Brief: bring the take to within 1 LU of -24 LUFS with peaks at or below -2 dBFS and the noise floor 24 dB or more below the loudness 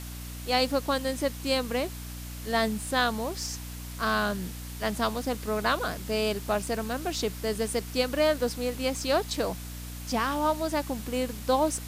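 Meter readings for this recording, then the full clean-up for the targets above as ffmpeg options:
hum 60 Hz; harmonics up to 300 Hz; hum level -37 dBFS; noise floor -39 dBFS; noise floor target -53 dBFS; loudness -29.0 LUFS; peak -12.0 dBFS; loudness target -24.0 LUFS
-> -af "bandreject=f=60:t=h:w=6,bandreject=f=120:t=h:w=6,bandreject=f=180:t=h:w=6,bandreject=f=240:t=h:w=6,bandreject=f=300:t=h:w=6"
-af "afftdn=nr=14:nf=-39"
-af "volume=5dB"

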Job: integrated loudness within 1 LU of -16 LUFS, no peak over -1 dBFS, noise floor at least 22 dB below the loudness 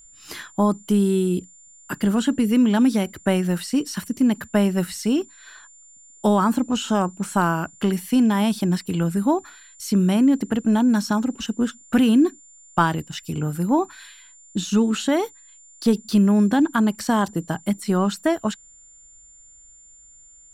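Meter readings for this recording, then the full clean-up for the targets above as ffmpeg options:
steady tone 7200 Hz; tone level -47 dBFS; loudness -21.5 LUFS; peak -5.0 dBFS; loudness target -16.0 LUFS
-> -af "bandreject=f=7.2k:w=30"
-af "volume=5.5dB,alimiter=limit=-1dB:level=0:latency=1"

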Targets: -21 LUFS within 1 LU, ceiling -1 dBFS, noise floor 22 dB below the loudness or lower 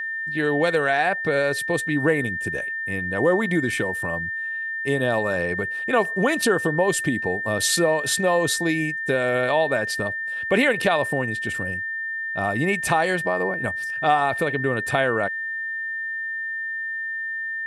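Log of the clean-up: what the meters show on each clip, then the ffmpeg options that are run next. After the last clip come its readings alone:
steady tone 1800 Hz; tone level -26 dBFS; loudness -22.5 LUFS; peak -5.0 dBFS; loudness target -21.0 LUFS
-> -af "bandreject=f=1.8k:w=30"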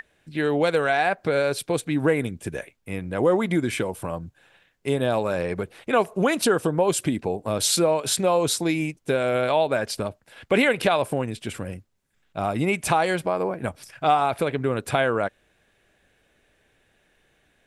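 steady tone none; loudness -24.0 LUFS; peak -6.0 dBFS; loudness target -21.0 LUFS
-> -af "volume=3dB"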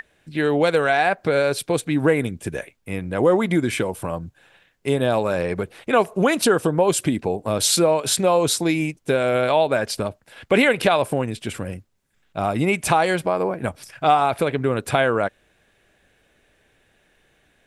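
loudness -21.0 LUFS; peak -3.0 dBFS; noise floor -63 dBFS

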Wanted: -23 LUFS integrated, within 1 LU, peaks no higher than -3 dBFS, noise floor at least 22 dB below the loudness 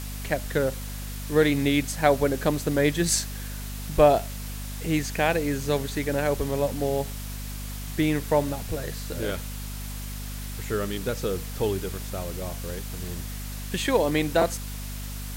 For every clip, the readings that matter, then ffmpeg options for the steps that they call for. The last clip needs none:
hum 50 Hz; harmonics up to 250 Hz; hum level -33 dBFS; noise floor -35 dBFS; noise floor target -49 dBFS; loudness -27.0 LUFS; peak -6.5 dBFS; loudness target -23.0 LUFS
-> -af "bandreject=f=50:t=h:w=6,bandreject=f=100:t=h:w=6,bandreject=f=150:t=h:w=6,bandreject=f=200:t=h:w=6,bandreject=f=250:t=h:w=6"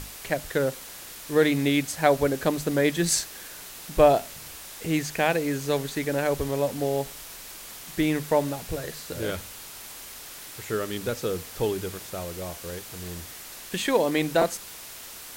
hum none; noise floor -42 dBFS; noise floor target -49 dBFS
-> -af "afftdn=nr=7:nf=-42"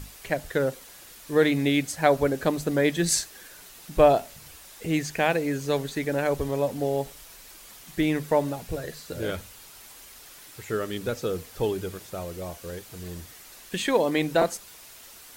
noise floor -48 dBFS; loudness -26.0 LUFS; peak -6.5 dBFS; loudness target -23.0 LUFS
-> -af "volume=3dB"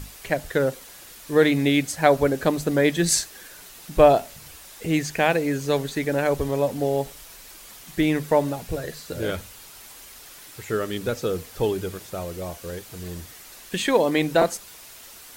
loudness -23.0 LUFS; peak -3.5 dBFS; noise floor -45 dBFS

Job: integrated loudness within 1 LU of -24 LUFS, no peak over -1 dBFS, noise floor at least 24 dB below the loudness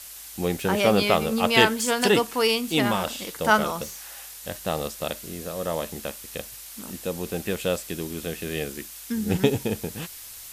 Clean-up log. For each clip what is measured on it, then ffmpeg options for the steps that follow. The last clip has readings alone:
noise floor -42 dBFS; noise floor target -49 dBFS; loudness -25.0 LUFS; peak -4.5 dBFS; loudness target -24.0 LUFS
-> -af "afftdn=nr=7:nf=-42"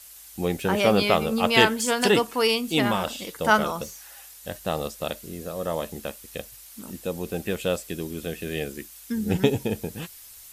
noise floor -46 dBFS; noise floor target -49 dBFS
-> -af "afftdn=nr=6:nf=-46"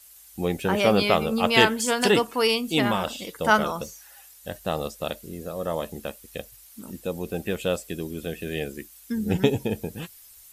noise floor -50 dBFS; loudness -25.0 LUFS; peak -4.5 dBFS; loudness target -24.0 LUFS
-> -af "volume=1dB"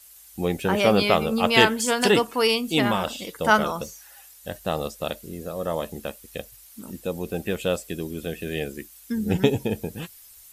loudness -24.0 LUFS; peak -3.5 dBFS; noise floor -49 dBFS

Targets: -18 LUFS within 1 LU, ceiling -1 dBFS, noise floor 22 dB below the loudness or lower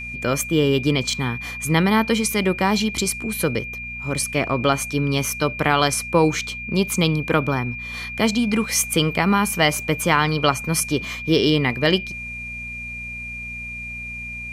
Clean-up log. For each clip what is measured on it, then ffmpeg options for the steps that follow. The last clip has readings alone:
hum 60 Hz; harmonics up to 240 Hz; hum level -36 dBFS; steady tone 2400 Hz; tone level -30 dBFS; loudness -21.0 LUFS; peak -2.5 dBFS; loudness target -18.0 LUFS
-> -af "bandreject=f=60:t=h:w=4,bandreject=f=120:t=h:w=4,bandreject=f=180:t=h:w=4,bandreject=f=240:t=h:w=4"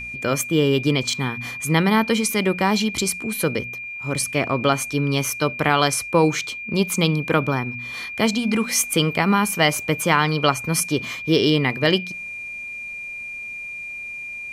hum none; steady tone 2400 Hz; tone level -30 dBFS
-> -af "bandreject=f=2.4k:w=30"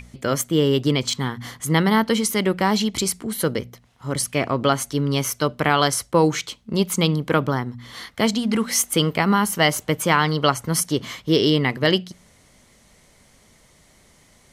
steady tone none; loudness -21.0 LUFS; peak -2.5 dBFS; loudness target -18.0 LUFS
-> -af "volume=3dB,alimiter=limit=-1dB:level=0:latency=1"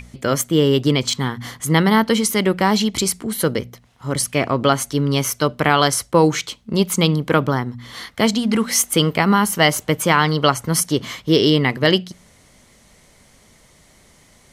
loudness -18.0 LUFS; peak -1.0 dBFS; noise floor -53 dBFS

